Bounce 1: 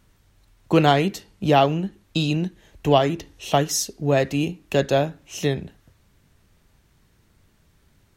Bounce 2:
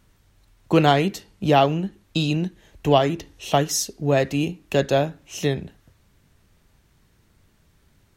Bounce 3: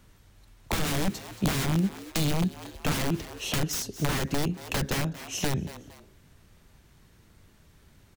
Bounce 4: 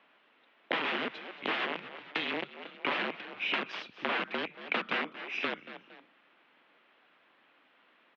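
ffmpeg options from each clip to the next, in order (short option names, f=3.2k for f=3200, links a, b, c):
-af anull
-filter_complex "[0:a]aeval=exprs='(mod(7.08*val(0)+1,2)-1)/7.08':c=same,asplit=3[a][b][c];[b]adelay=229,afreqshift=110,volume=-21dB[d];[c]adelay=458,afreqshift=220,volume=-30.6dB[e];[a][d][e]amix=inputs=3:normalize=0,acrossover=split=290[f][g];[g]acompressor=threshold=-32dB:ratio=6[h];[f][h]amix=inputs=2:normalize=0,volume=2.5dB"
-af "highpass=f=350:t=q:w=0.5412,highpass=f=350:t=q:w=1.307,lowpass=f=3.3k:t=q:w=0.5176,lowpass=f=3.3k:t=q:w=0.7071,lowpass=f=3.3k:t=q:w=1.932,afreqshift=-330,highpass=f=230:w=0.5412,highpass=f=230:w=1.3066,highshelf=f=2.3k:g=8.5"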